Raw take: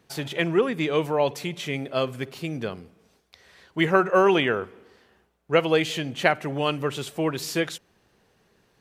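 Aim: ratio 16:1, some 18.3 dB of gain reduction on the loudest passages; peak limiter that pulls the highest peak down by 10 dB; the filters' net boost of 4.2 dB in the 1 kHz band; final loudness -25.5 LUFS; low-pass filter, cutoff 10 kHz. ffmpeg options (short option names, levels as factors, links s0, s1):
-af "lowpass=10000,equalizer=f=1000:t=o:g=5.5,acompressor=threshold=0.0316:ratio=16,volume=3.98,alimiter=limit=0.211:level=0:latency=1"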